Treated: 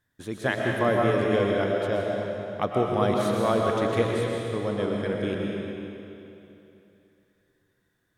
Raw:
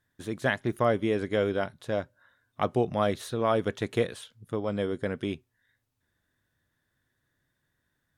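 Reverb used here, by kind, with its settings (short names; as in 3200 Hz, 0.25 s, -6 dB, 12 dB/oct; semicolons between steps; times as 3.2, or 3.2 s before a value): digital reverb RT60 3 s, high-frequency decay 0.9×, pre-delay 80 ms, DRR -1.5 dB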